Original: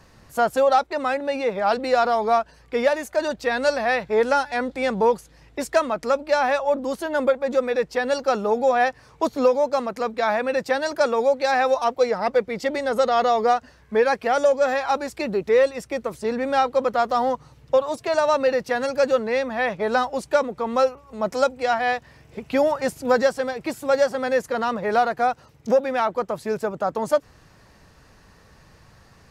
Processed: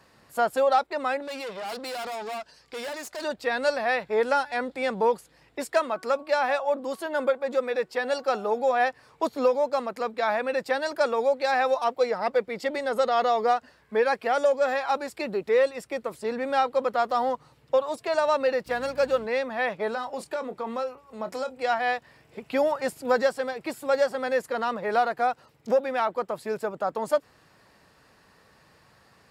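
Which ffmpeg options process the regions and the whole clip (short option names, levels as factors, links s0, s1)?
-filter_complex "[0:a]asettb=1/sr,asplit=3[s0][s1][s2];[s0]atrim=end=1.224[s3];[s1]atrim=start=1.22:end=3.24,asetpts=PTS-STARTPTS,afade=t=in:d=0.004:c=qsin,afade=t=out:st=2.016:d=0.004:c=qsin,equalizer=f=5500:w=0.98:g=13.5,aeval=exprs='(tanh(25.1*val(0)+0.55)-tanh(0.55))/25.1':c=same[s4];[s2]atrim=start=3.236[s5];[s3][s4]acrossfade=d=0.004:c1=hsin:c2=qsin[s6];[s6][s5]acrossfade=d=0.004:c1=qsin:c2=hsin,asettb=1/sr,asplit=3[s7][s8][s9];[s7]atrim=end=5.644[s10];[s8]atrim=start=5.64:end=8.8,asetpts=PTS-STARTPTS,afade=t=in:d=0.004:c=qsin,afade=t=out:st=3.156:d=0.004:c=qsin,lowshelf=f=140:g=-7,bandreject=f=372.9:t=h:w=4,bandreject=f=745.8:t=h:w=4,bandreject=f=1118.7:t=h:w=4,bandreject=f=1491.6:t=h:w=4[s11];[s9]atrim=start=8.796[s12];[s10][s11]acrossfade=d=0.004:c1=hsin:c2=qsin[s13];[s13][s12]acrossfade=d=0.004:c1=qsin:c2=hsin,asettb=1/sr,asplit=3[s14][s15][s16];[s14]atrim=end=18.664[s17];[s15]atrim=start=18.66:end=19.26,asetpts=PTS-STARTPTS,afade=t=in:d=0.004:c=qsin,afade=t=out:st=0.596:d=0.004:c=qsin,aeval=exprs='sgn(val(0))*max(abs(val(0))-0.00708,0)':c=same,bandreject=f=1900:w=29,aeval=exprs='val(0)+0.0158*(sin(2*PI*60*n/s)+sin(2*PI*2*60*n/s)/2+sin(2*PI*3*60*n/s)/3+sin(2*PI*4*60*n/s)/4+sin(2*PI*5*60*n/s)/5)':c=same[s18];[s16]atrim=start=19.256[s19];[s17][s18]acrossfade=d=0.004:c1=hsin:c2=qsin[s20];[s20][s19]acrossfade=d=0.004:c1=qsin:c2=hsin,asettb=1/sr,asplit=3[s21][s22][s23];[s21]atrim=end=19.904[s24];[s22]atrim=start=19.9:end=21.6,asetpts=PTS-STARTPTS,afade=t=in:d=0.004:c=qsin,afade=t=out:st=1.696:d=0.004:c=qsin,acompressor=threshold=0.0708:ratio=5:attack=3.2:release=140:knee=1:detection=peak,asplit=2[s25][s26];[s26]adelay=27,volume=0.266[s27];[s25][s27]amix=inputs=2:normalize=0,atrim=end_sample=74970[s28];[s23]atrim=start=21.596[s29];[s24][s28]acrossfade=d=0.004:c1=hsin:c2=qsin[s30];[s30][s29]acrossfade=d=0.004:c1=qsin:c2=hsin,highpass=f=270:p=1,equalizer=f=6100:w=5.8:g=-8,volume=0.708"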